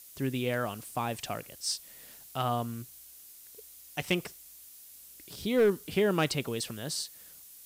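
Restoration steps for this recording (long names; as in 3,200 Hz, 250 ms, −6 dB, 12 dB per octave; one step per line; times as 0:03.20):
clipped peaks rebuilt −18 dBFS
noise reduction from a noise print 24 dB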